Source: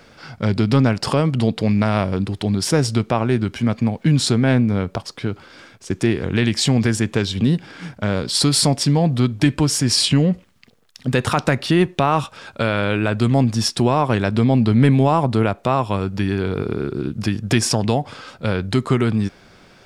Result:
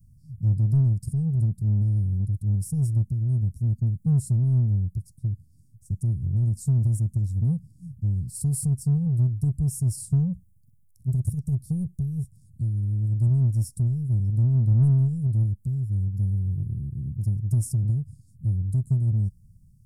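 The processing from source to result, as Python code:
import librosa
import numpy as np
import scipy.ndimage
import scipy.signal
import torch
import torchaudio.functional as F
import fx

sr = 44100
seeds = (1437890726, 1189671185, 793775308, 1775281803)

p1 = scipy.signal.sosfilt(scipy.signal.cheby2(4, 70, [510.0, 3100.0], 'bandstop', fs=sr, output='sos'), x)
p2 = fx.high_shelf(p1, sr, hz=6600.0, db=-10.0)
p3 = 10.0 ** (-28.5 / 20.0) * np.tanh(p2 / 10.0 ** (-28.5 / 20.0))
y = p2 + F.gain(torch.from_numpy(p3), -7.0).numpy()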